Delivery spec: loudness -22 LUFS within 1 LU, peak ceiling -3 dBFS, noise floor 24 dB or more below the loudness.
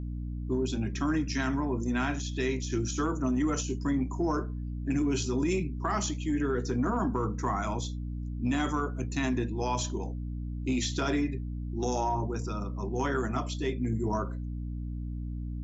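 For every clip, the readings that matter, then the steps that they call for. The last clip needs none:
hum 60 Hz; highest harmonic 300 Hz; hum level -33 dBFS; loudness -31.5 LUFS; peak level -17.0 dBFS; loudness target -22.0 LUFS
-> de-hum 60 Hz, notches 5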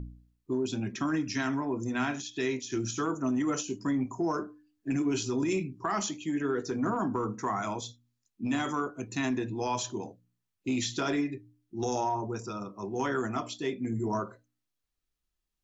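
hum not found; loudness -32.0 LUFS; peak level -18.5 dBFS; loudness target -22.0 LUFS
-> trim +10 dB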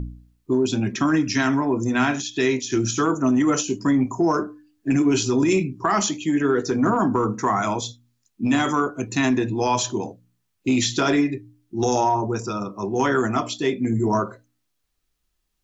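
loudness -22.0 LUFS; peak level -8.5 dBFS; noise floor -74 dBFS

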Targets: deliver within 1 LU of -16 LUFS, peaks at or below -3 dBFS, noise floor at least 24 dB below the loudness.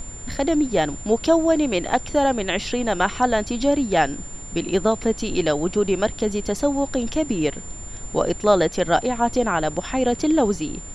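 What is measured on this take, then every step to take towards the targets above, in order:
steady tone 7.2 kHz; tone level -37 dBFS; noise floor -36 dBFS; noise floor target -46 dBFS; loudness -22.0 LUFS; peak level -4.0 dBFS; loudness target -16.0 LUFS
-> band-stop 7.2 kHz, Q 30; noise print and reduce 10 dB; trim +6 dB; peak limiter -3 dBFS

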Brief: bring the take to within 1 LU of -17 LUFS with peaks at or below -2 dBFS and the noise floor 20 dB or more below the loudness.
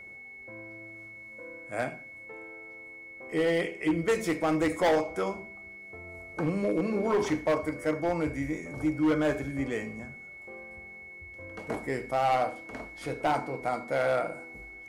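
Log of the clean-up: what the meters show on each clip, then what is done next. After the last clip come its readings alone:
clipped samples 1.3%; clipping level -20.5 dBFS; steady tone 2.2 kHz; tone level -44 dBFS; loudness -29.5 LUFS; peak level -20.5 dBFS; loudness target -17.0 LUFS
-> clip repair -20.5 dBFS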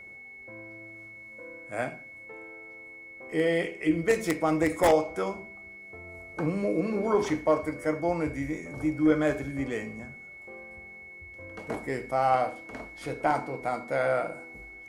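clipped samples 0.0%; steady tone 2.2 kHz; tone level -44 dBFS
-> band-stop 2.2 kHz, Q 30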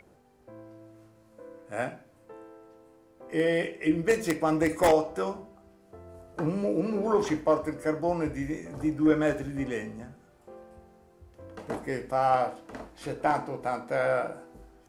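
steady tone not found; loudness -28.5 LUFS; peak level -11.0 dBFS; loudness target -17.0 LUFS
-> trim +11.5 dB; peak limiter -2 dBFS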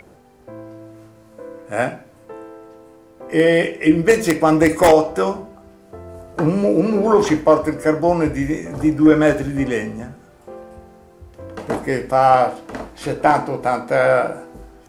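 loudness -17.0 LUFS; peak level -2.0 dBFS; noise floor -48 dBFS

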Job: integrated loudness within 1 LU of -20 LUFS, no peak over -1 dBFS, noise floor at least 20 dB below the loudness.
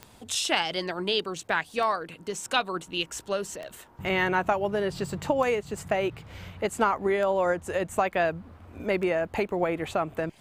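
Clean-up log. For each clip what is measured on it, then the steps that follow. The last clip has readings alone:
clicks found 6; loudness -28.0 LUFS; peak level -8.0 dBFS; loudness target -20.0 LUFS
-> de-click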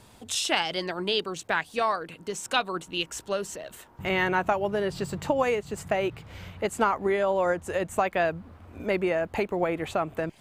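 clicks found 0; loudness -28.0 LUFS; peak level -8.0 dBFS; loudness target -20.0 LUFS
-> trim +8 dB; peak limiter -1 dBFS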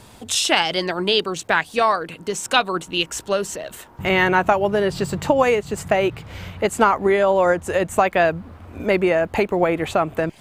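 loudness -20.0 LUFS; peak level -1.0 dBFS; noise floor -46 dBFS

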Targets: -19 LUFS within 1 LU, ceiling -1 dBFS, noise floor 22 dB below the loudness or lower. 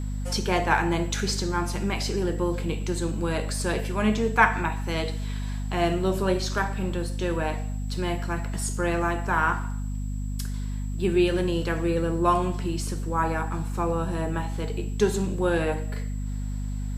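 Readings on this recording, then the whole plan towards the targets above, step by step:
hum 50 Hz; highest harmonic 250 Hz; hum level -27 dBFS; steady tone 7.7 kHz; tone level -52 dBFS; loudness -27.0 LUFS; peak level -4.0 dBFS; loudness target -19.0 LUFS
-> de-hum 50 Hz, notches 5; band-stop 7.7 kHz, Q 30; trim +8 dB; peak limiter -1 dBFS

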